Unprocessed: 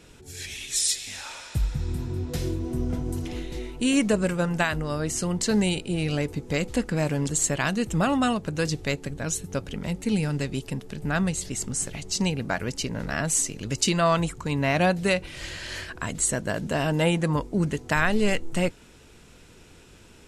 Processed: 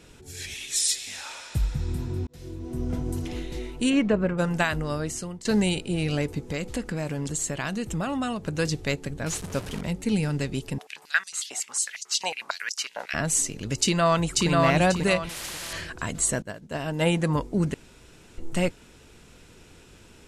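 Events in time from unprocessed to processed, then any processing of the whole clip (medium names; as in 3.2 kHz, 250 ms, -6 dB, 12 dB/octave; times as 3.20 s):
0.54–1.51 s: bass shelf 170 Hz -9 dB
2.27–2.98 s: fade in
3.89–4.37 s: low-pass 3.5 kHz -> 1.5 kHz
4.92–5.45 s: fade out, to -20 dB
6.47–8.47 s: compression 2:1, threshold -28 dBFS
9.26–9.81 s: one-bit delta coder 64 kbps, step -31.5 dBFS
10.78–13.14 s: step-sequenced high-pass 11 Hz 740–5600 Hz
13.78–14.49 s: echo throw 540 ms, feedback 30%, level -1 dB
15.29–15.73 s: spectrum-flattening compressor 4:1
16.42–17.06 s: upward expansion 2.5:1, over -34 dBFS
17.74–18.38 s: room tone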